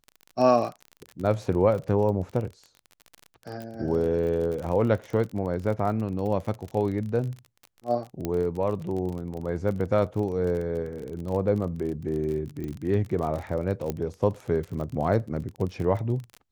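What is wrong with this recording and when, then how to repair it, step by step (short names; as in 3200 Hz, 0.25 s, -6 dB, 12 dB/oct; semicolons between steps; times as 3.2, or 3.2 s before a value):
crackle 34/s -32 dBFS
3.62 pop
8.25 pop -15 dBFS
12.64 pop -23 dBFS
13.9 pop -15 dBFS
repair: de-click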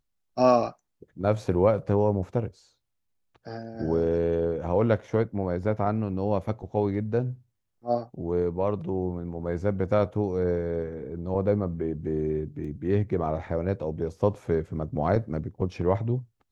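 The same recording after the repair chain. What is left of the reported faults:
12.64 pop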